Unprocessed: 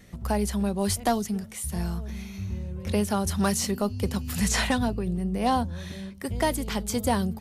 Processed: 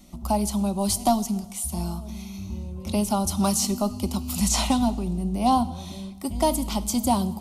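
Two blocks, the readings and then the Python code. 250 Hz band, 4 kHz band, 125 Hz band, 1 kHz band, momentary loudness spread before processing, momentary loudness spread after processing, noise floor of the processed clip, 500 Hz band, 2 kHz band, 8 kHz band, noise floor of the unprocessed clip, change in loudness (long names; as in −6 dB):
+3.0 dB, +2.5 dB, 0.0 dB, +4.0 dB, 9 LU, 13 LU, −39 dBFS, +0.5 dB, −8.5 dB, +4.0 dB, −41 dBFS, +2.5 dB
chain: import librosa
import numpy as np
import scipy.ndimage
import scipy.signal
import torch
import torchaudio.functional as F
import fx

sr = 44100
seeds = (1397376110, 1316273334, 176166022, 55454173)

y = fx.fixed_phaser(x, sr, hz=460.0, stages=6)
y = fx.rev_double_slope(y, sr, seeds[0], early_s=0.99, late_s=2.8, knee_db=-18, drr_db=13.5)
y = F.gain(torch.from_numpy(y), 4.5).numpy()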